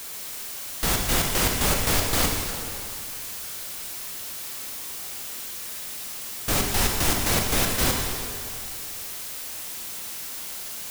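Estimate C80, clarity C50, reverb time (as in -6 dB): 3.5 dB, 2.0 dB, 2.4 s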